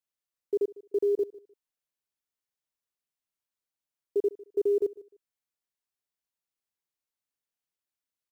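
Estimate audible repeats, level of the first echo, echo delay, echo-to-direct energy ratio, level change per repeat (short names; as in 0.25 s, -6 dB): 2, -20.0 dB, 0.151 s, -20.0 dB, -13.5 dB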